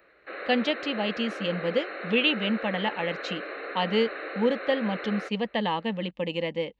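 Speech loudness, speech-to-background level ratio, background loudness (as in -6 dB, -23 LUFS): -28.0 LUFS, 8.5 dB, -36.5 LUFS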